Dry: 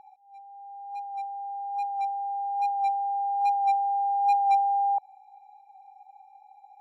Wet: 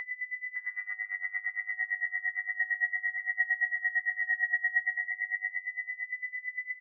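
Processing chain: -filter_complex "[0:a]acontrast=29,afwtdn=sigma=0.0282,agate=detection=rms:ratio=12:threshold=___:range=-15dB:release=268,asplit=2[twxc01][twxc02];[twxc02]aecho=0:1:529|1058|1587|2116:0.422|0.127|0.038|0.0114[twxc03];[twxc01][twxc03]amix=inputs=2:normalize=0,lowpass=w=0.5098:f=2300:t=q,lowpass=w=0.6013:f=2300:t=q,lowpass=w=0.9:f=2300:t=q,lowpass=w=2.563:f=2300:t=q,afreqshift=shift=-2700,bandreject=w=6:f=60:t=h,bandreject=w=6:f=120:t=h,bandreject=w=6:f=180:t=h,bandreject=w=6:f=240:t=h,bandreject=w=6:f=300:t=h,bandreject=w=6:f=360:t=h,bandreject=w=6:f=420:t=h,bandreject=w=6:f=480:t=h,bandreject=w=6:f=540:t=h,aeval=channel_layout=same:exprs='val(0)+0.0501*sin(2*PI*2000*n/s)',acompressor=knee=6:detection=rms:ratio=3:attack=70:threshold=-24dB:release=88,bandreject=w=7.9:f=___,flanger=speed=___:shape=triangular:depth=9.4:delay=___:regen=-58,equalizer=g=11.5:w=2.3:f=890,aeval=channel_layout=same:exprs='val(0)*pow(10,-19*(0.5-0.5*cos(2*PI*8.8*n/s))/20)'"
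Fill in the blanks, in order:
-49dB, 940, 0.53, 1.7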